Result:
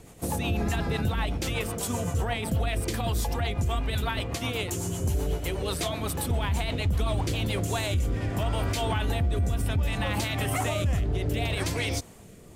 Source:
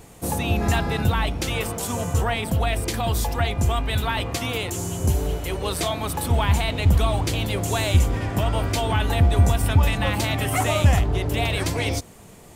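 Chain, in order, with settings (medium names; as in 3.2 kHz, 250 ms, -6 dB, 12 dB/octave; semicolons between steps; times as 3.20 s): rotary cabinet horn 8 Hz, later 0.65 Hz, at 7.13 s; peak limiter -17.5 dBFS, peak gain reduction 11 dB; trim -1 dB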